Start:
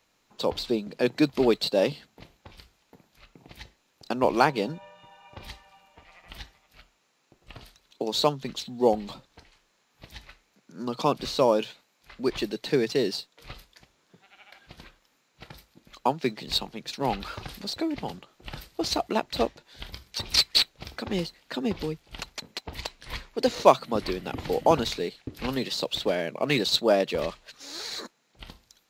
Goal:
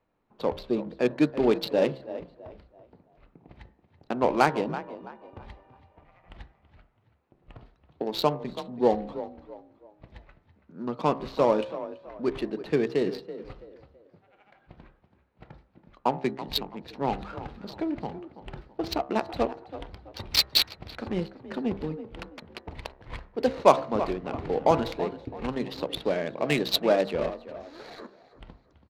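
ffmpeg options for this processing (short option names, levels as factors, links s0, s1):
-filter_complex "[0:a]bandreject=f=66.38:t=h:w=4,bandreject=f=132.76:t=h:w=4,bandreject=f=199.14:t=h:w=4,bandreject=f=265.52:t=h:w=4,bandreject=f=331.9:t=h:w=4,bandreject=f=398.28:t=h:w=4,bandreject=f=464.66:t=h:w=4,bandreject=f=531.04:t=h:w=4,bandreject=f=597.42:t=h:w=4,bandreject=f=663.8:t=h:w=4,bandreject=f=730.18:t=h:w=4,bandreject=f=796.56:t=h:w=4,bandreject=f=862.94:t=h:w=4,bandreject=f=929.32:t=h:w=4,bandreject=f=995.7:t=h:w=4,bandreject=f=1062.08:t=h:w=4,bandreject=f=1128.46:t=h:w=4,bandreject=f=1194.84:t=h:w=4,bandreject=f=1261.22:t=h:w=4,bandreject=f=1327.6:t=h:w=4,bandreject=f=1393.98:t=h:w=4,bandreject=f=1460.36:t=h:w=4,bandreject=f=1526.74:t=h:w=4,bandreject=f=1593.12:t=h:w=4,bandreject=f=1659.5:t=h:w=4,bandreject=f=1725.88:t=h:w=4,bandreject=f=1792.26:t=h:w=4,bandreject=f=1858.64:t=h:w=4,bandreject=f=1925.02:t=h:w=4,bandreject=f=1991.4:t=h:w=4,asplit=5[s0][s1][s2][s3][s4];[s1]adelay=330,afreqshift=32,volume=0.224[s5];[s2]adelay=660,afreqshift=64,volume=0.0804[s6];[s3]adelay=990,afreqshift=96,volume=0.0292[s7];[s4]adelay=1320,afreqshift=128,volume=0.0105[s8];[s0][s5][s6][s7][s8]amix=inputs=5:normalize=0,adynamicsmooth=sensitivity=2:basefreq=1200"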